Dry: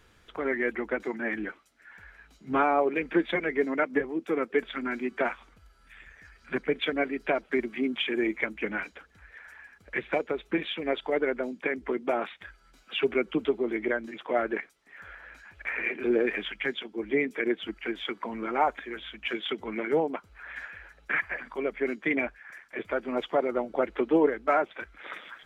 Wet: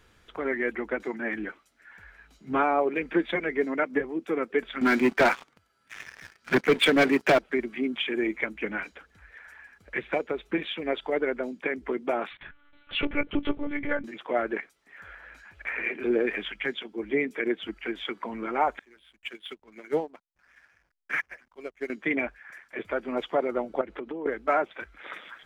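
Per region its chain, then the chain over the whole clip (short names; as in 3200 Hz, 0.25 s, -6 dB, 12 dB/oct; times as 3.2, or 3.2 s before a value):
4.81–7.39 HPF 99 Hz 24 dB/oct + sample leveller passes 3
12.31–14.04 comb 4 ms, depth 74% + monotone LPC vocoder at 8 kHz 290 Hz
18.79–21.9 high shelf 2200 Hz +7.5 dB + backlash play -39 dBFS + upward expander 2.5:1, over -34 dBFS
23.81–24.26 HPF 81 Hz + tilt -1.5 dB/oct + compressor 16:1, threshold -31 dBFS
whole clip: dry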